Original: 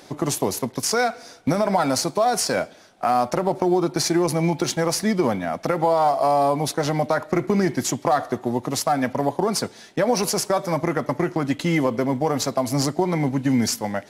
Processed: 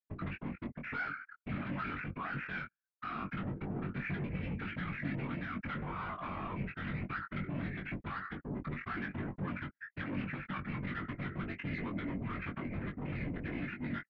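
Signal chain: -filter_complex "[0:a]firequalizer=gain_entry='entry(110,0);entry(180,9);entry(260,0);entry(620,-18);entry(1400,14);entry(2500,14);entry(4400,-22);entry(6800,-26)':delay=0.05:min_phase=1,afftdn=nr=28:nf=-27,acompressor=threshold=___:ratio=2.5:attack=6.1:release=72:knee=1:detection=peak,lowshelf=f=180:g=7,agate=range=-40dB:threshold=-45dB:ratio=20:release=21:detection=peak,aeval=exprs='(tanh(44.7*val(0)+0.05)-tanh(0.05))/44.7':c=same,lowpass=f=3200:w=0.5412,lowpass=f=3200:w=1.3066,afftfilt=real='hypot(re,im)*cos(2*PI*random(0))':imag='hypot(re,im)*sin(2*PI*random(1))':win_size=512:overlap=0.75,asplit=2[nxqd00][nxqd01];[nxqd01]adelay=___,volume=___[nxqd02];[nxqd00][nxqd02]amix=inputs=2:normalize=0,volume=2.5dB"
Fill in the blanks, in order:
-38dB, 21, -4.5dB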